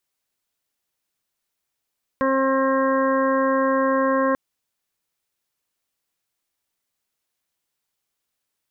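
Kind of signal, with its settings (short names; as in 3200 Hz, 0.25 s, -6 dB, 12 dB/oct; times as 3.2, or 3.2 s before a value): steady additive tone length 2.14 s, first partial 267 Hz, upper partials 2/-18/0/-13/-7.5/-11 dB, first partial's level -22.5 dB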